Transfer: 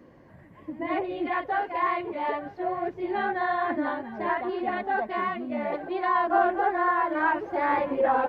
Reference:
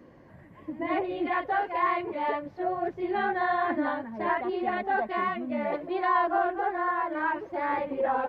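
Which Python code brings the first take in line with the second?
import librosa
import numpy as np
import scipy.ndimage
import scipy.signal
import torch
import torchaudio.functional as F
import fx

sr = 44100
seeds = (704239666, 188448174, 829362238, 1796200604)

y = fx.fix_echo_inverse(x, sr, delay_ms=886, level_db=-17.5)
y = fx.gain(y, sr, db=fx.steps((0.0, 0.0), (6.3, -4.0)))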